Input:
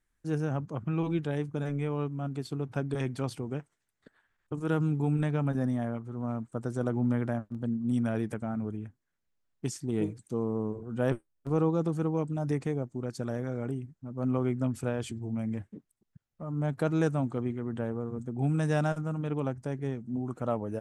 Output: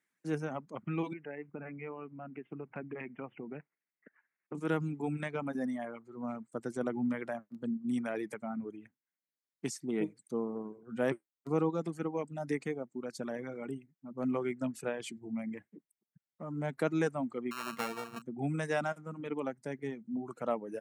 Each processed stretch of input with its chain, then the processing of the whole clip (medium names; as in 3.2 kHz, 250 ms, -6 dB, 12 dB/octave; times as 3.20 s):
1.13–4.55 s: steep low-pass 2.8 kHz 96 dB/octave + compression 2.5:1, threshold -34 dBFS
17.51–18.22 s: sorted samples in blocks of 32 samples + band-stop 580 Hz, Q 9 + small resonant body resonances 600/1200 Hz, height 9 dB, ringing for 30 ms
whole clip: high-pass 170 Hz 24 dB/octave; reverb removal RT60 1.6 s; peaking EQ 2.1 kHz +8 dB 0.45 oct; trim -1.5 dB